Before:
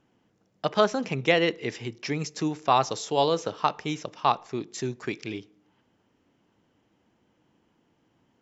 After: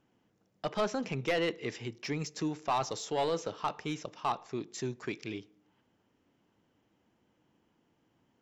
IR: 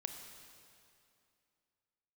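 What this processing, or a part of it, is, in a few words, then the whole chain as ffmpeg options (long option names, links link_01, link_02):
saturation between pre-emphasis and de-emphasis: -af "highshelf=frequency=4500:gain=11,asoftclip=type=tanh:threshold=-18.5dB,highshelf=frequency=4500:gain=-11,volume=-4.5dB"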